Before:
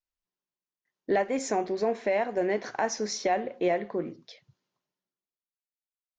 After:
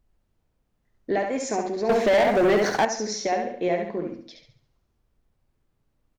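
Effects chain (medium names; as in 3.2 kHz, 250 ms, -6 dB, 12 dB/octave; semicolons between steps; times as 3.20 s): tone controls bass +3 dB, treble +2 dB; added noise brown -69 dBFS; on a send: feedback delay 69 ms, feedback 38%, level -5 dB; 1.89–2.85 s: on the sum: waveshaping leveller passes 3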